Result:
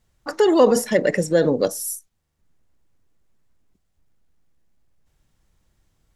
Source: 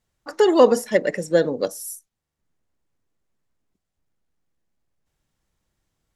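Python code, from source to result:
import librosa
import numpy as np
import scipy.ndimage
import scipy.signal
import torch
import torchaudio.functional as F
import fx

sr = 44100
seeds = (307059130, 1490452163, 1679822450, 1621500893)

p1 = fx.low_shelf(x, sr, hz=120.0, db=7.5)
p2 = fx.over_compress(p1, sr, threshold_db=-22.0, ratio=-1.0)
p3 = p1 + (p2 * librosa.db_to_amplitude(-1.5))
y = p3 * librosa.db_to_amplitude(-2.5)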